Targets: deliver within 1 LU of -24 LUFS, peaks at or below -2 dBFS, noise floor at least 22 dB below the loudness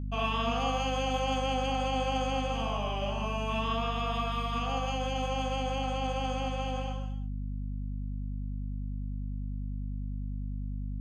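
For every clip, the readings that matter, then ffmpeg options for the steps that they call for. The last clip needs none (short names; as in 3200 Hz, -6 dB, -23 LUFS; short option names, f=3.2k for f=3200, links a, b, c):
hum 50 Hz; harmonics up to 250 Hz; hum level -32 dBFS; loudness -33.0 LUFS; peak -17.5 dBFS; loudness target -24.0 LUFS
-> -af "bandreject=f=50:t=h:w=6,bandreject=f=100:t=h:w=6,bandreject=f=150:t=h:w=6,bandreject=f=200:t=h:w=6,bandreject=f=250:t=h:w=6"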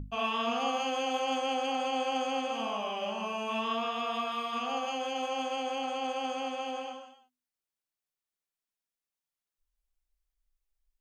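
hum none; loudness -32.5 LUFS; peak -17.5 dBFS; loudness target -24.0 LUFS
-> -af "volume=8.5dB"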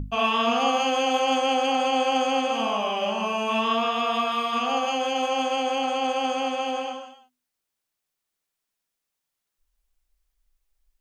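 loudness -24.0 LUFS; peak -9.0 dBFS; noise floor -83 dBFS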